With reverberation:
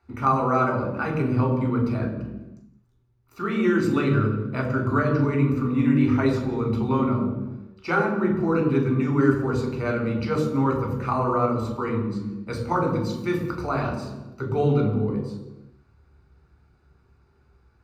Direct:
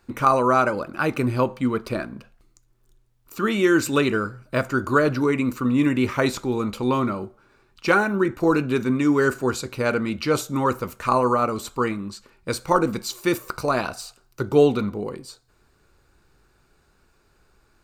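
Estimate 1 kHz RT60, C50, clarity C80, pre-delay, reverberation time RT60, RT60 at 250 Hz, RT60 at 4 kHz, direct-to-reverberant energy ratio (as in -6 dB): 1.0 s, 5.5 dB, 7.0 dB, 3 ms, 1.1 s, no reading, 0.85 s, -0.5 dB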